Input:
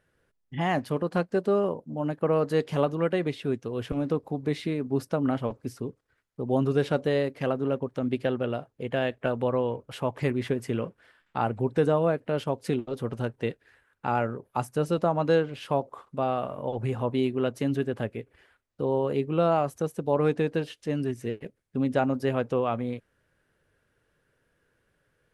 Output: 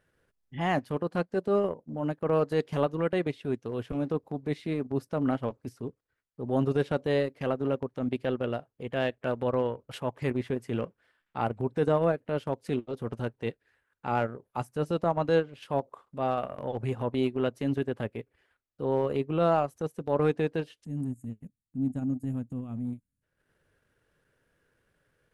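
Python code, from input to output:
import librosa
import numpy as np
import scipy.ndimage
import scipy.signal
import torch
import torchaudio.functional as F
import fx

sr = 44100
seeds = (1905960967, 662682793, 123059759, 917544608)

y = fx.spec_box(x, sr, start_s=20.84, length_s=2.39, low_hz=300.0, high_hz=6500.0, gain_db=-22)
y = fx.transient(y, sr, attack_db=-6, sustain_db=-10)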